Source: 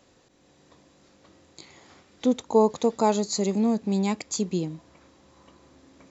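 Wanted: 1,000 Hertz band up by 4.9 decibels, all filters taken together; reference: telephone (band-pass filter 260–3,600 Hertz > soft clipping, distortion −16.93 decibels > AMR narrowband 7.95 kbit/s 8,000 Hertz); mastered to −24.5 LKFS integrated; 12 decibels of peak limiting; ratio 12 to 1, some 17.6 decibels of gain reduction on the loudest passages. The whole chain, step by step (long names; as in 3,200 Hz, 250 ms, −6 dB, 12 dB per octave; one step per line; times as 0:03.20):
parametric band 1,000 Hz +6 dB
downward compressor 12 to 1, threshold −30 dBFS
brickwall limiter −31 dBFS
band-pass filter 260–3,600 Hz
soft clipping −36 dBFS
level +24 dB
AMR narrowband 7.95 kbit/s 8,000 Hz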